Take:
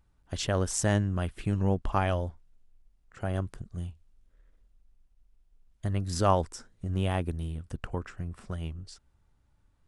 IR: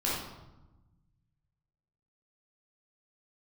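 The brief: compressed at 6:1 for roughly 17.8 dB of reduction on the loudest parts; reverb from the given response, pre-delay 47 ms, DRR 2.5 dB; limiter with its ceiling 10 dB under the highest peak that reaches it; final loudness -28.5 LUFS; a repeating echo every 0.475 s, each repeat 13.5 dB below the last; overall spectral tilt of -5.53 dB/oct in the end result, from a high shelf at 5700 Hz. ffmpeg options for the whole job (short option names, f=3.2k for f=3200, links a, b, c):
-filter_complex "[0:a]highshelf=f=5.7k:g=5.5,acompressor=threshold=-38dB:ratio=6,alimiter=level_in=8dB:limit=-24dB:level=0:latency=1,volume=-8dB,aecho=1:1:475|950:0.211|0.0444,asplit=2[a][b];[1:a]atrim=start_sample=2205,adelay=47[c];[b][c]afir=irnorm=-1:irlink=0,volume=-10.5dB[d];[a][d]amix=inputs=2:normalize=0,volume=12.5dB"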